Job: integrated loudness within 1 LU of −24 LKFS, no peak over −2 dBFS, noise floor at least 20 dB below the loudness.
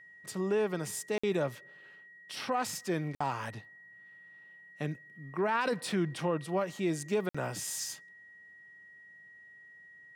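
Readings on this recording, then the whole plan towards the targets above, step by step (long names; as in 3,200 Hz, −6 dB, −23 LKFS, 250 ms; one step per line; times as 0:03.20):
number of dropouts 3; longest dropout 55 ms; interfering tone 1,900 Hz; level of the tone −52 dBFS; integrated loudness −34.0 LKFS; sample peak −17.0 dBFS; target loudness −24.0 LKFS
→ repair the gap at 0:01.18/0:03.15/0:07.29, 55 ms
notch filter 1,900 Hz, Q 30
level +10 dB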